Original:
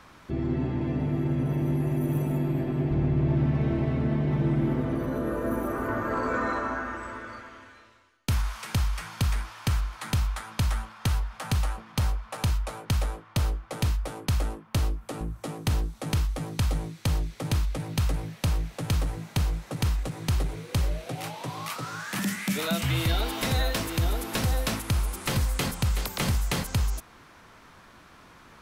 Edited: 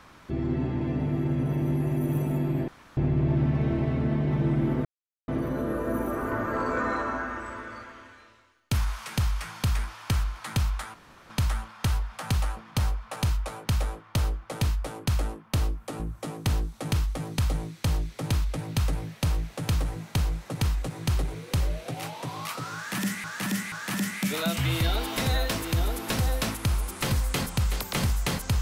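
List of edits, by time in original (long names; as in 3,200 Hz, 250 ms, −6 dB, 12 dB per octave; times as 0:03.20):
0:02.68–0:02.97: fill with room tone
0:04.85: splice in silence 0.43 s
0:10.51: splice in room tone 0.36 s
0:21.97–0:22.45: repeat, 3 plays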